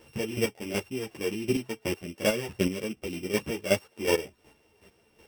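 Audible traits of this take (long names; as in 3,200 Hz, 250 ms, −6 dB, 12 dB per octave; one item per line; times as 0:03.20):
a buzz of ramps at a fixed pitch in blocks of 16 samples
chopped level 2.7 Hz, depth 65%, duty 20%
a shimmering, thickened sound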